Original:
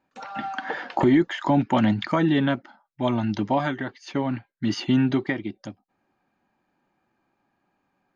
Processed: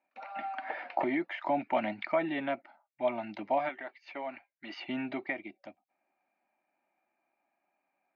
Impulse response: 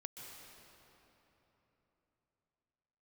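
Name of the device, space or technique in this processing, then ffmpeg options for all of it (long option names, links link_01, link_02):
phone earpiece: -filter_complex "[0:a]highpass=400,equalizer=frequency=450:width_type=q:width=4:gain=-9,equalizer=frequency=650:width_type=q:width=4:gain=9,equalizer=frequency=1100:width_type=q:width=4:gain=-4,equalizer=frequency=1600:width_type=q:width=4:gain=-5,equalizer=frequency=2300:width_type=q:width=4:gain=9,equalizer=frequency=3300:width_type=q:width=4:gain=-9,lowpass=frequency=3700:width=0.5412,lowpass=frequency=3700:width=1.3066,asettb=1/sr,asplit=3[link_01][link_02][link_03];[link_01]atrim=end=3.694[link_04];[link_02]atrim=start=3.69:end=4.88,asetpts=PTS-STARTPTS,afade=type=in:duration=0.004:curve=qsin,afade=type=out:start_time=1.186:duration=0.004:curve=qsin,equalizer=frequency=130:width_type=o:width=2.1:gain=-13.5[link_05];[link_03]atrim=start=4.876[link_06];[link_04][link_05]acrossfade=duration=0.004:curve1=hsin:curve2=qsin[link_07];[link_07][link_06]acrossfade=duration=0.004:curve1=qsin:curve2=hsin,volume=-7dB"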